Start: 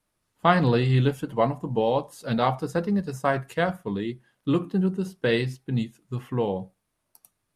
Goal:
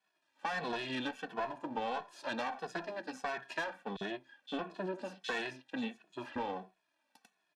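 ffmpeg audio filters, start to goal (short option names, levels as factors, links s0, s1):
-filter_complex "[0:a]equalizer=f=2100:w=1.1:g=7.5,aeval=exprs='max(val(0),0)':c=same,highpass=f=260:w=0.5412,highpass=f=260:w=1.3066,bandreject=f=2100:w=10,alimiter=limit=0.178:level=0:latency=1:release=136,lowpass=5100,asettb=1/sr,asplit=3[s0][s1][s2];[s0]atrim=end=3.964[s3];[s1]atrim=start=3.96:end=6.36,asetpts=PTS-STARTPTS,afade=t=in:d=0.004:c=qsin,afade=t=out:st=2.396:d=0.004:c=qsin,acrossover=split=3900[s4][s5];[s4]adelay=50[s6];[s6][s5]amix=inputs=2:normalize=0,atrim=end_sample=105840[s7];[s2]atrim=start=6.356[s8];[s3][s7]acrossfade=d=0.004:c1=hsin:c2=qsin[s9];[s9][s8]acrossfade=d=0.004:c1=qsin:c2=hsin,acontrast=82,aecho=1:1:1.2:0.48,asoftclip=type=tanh:threshold=0.211,acompressor=threshold=0.0251:ratio=2.5,asplit=2[s10][s11];[s11]adelay=2.3,afreqshift=-1.5[s12];[s10][s12]amix=inputs=2:normalize=1,volume=0.75"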